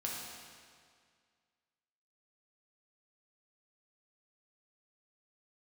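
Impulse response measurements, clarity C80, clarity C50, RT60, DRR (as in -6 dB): 1.5 dB, 0.0 dB, 2.0 s, -3.5 dB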